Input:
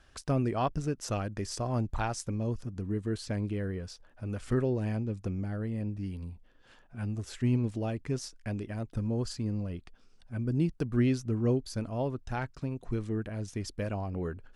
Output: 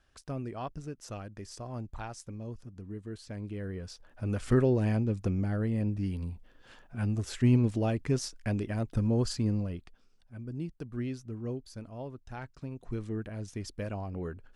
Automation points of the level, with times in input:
0:03.27 −8.5 dB
0:04.26 +4 dB
0:09.49 +4 dB
0:10.33 −9 dB
0:12.21 −9 dB
0:13.03 −2.5 dB

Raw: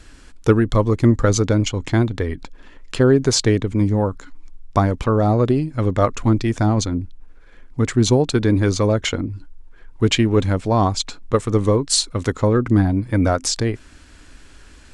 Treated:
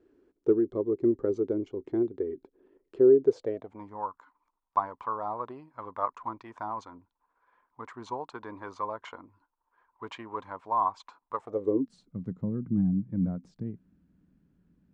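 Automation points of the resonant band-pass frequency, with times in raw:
resonant band-pass, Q 6.8
0:03.23 380 Hz
0:03.88 1,000 Hz
0:11.35 1,000 Hz
0:11.96 180 Hz

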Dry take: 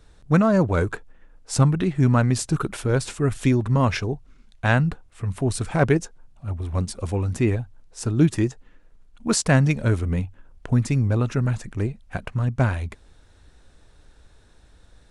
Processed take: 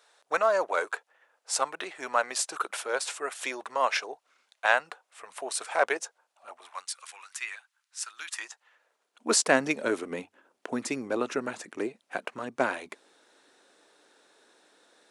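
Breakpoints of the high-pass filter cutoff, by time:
high-pass filter 24 dB per octave
0:06.49 570 Hz
0:06.94 1,300 Hz
0:08.19 1,300 Hz
0:09.34 310 Hz

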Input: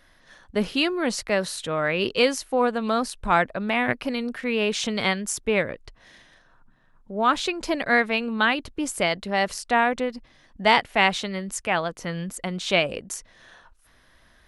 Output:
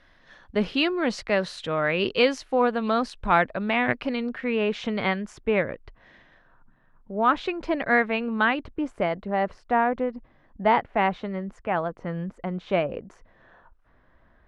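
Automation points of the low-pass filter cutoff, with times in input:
0:03.92 4,000 Hz
0:04.62 2,200 Hz
0:08.51 2,200 Hz
0:09.10 1,300 Hz

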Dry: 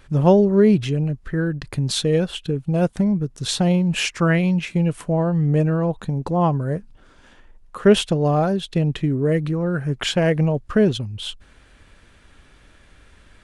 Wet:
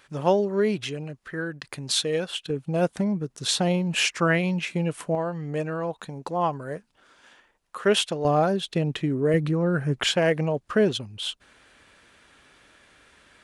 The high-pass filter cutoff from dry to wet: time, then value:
high-pass filter 6 dB per octave
810 Hz
from 0:02.50 360 Hz
from 0:05.15 820 Hz
from 0:08.25 290 Hz
from 0:09.34 120 Hz
from 0:10.12 400 Hz

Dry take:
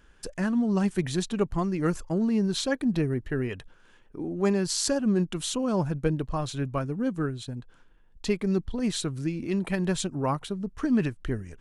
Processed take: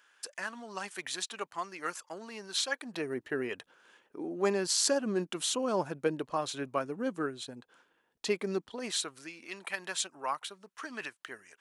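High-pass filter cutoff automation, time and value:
0:02.76 950 Hz
0:03.18 380 Hz
0:08.48 380 Hz
0:09.37 1,000 Hz

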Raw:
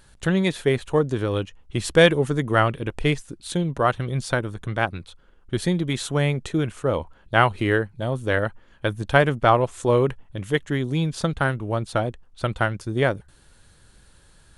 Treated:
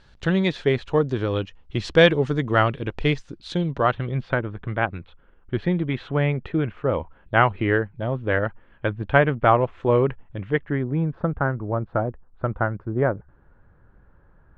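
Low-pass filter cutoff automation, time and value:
low-pass filter 24 dB per octave
0:03.69 5,200 Hz
0:04.19 2,700 Hz
0:10.39 2,700 Hz
0:11.12 1,500 Hz

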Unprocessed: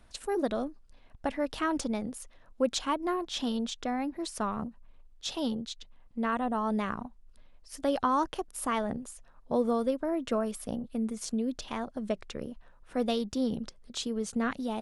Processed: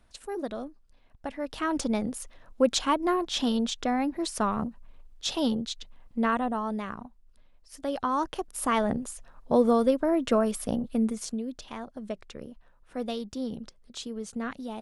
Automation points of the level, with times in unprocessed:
0:01.33 −4 dB
0:01.95 +5 dB
0:06.25 +5 dB
0:06.79 −3 dB
0:07.86 −3 dB
0:08.88 +6 dB
0:11.04 +6 dB
0:11.45 −3.5 dB

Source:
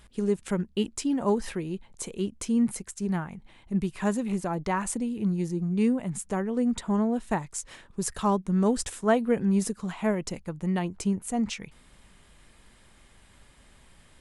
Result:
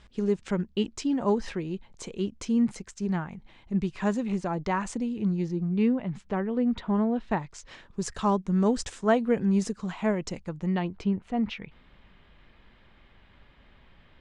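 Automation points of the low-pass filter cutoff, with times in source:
low-pass filter 24 dB per octave
0:05.19 6,400 Hz
0:05.87 4,000 Hz
0:07.08 4,000 Hz
0:08.05 7,000 Hz
0:10.49 7,000 Hz
0:11.15 3,600 Hz

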